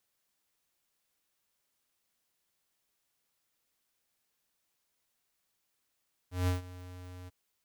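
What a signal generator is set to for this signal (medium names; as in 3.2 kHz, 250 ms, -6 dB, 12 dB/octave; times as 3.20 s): ADSR square 90.4 Hz, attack 165 ms, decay 138 ms, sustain -19 dB, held 0.97 s, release 22 ms -27.5 dBFS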